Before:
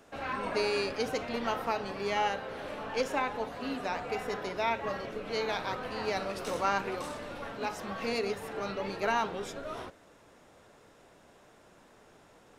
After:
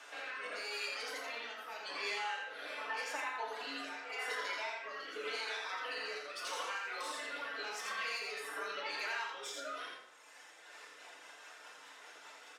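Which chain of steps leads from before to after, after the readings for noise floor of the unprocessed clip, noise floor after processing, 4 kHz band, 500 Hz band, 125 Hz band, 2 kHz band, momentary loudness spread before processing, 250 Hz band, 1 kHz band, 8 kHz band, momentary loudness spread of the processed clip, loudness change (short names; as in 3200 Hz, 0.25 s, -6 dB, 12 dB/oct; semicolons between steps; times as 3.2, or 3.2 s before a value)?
-59 dBFS, -56 dBFS, -1.5 dB, -13.0 dB, under -30 dB, -1.5 dB, 9 LU, -18.0 dB, -8.5 dB, -0.5 dB, 15 LU, -6.5 dB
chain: tracing distortion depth 0.042 ms; reverb removal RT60 1.7 s; HPF 1300 Hz 12 dB/oct; high shelf 9400 Hz -11.5 dB; compressor, threshold -50 dBFS, peak gain reduction 19 dB; limiter -45.5 dBFS, peak gain reduction 9.5 dB; rotary speaker horn 0.85 Hz, later 5 Hz, at 10.24; on a send: echo 84 ms -3.5 dB; on the sum: FDN reverb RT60 0.73 s, low-frequency decay 1.1×, high-frequency decay 0.75×, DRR -2 dB; gain +13 dB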